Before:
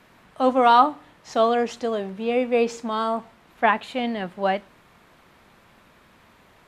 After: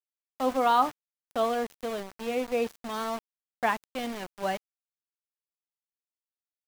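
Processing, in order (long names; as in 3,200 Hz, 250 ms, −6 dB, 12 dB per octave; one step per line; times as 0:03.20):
centre clipping without the shift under −27.5 dBFS
level −7.5 dB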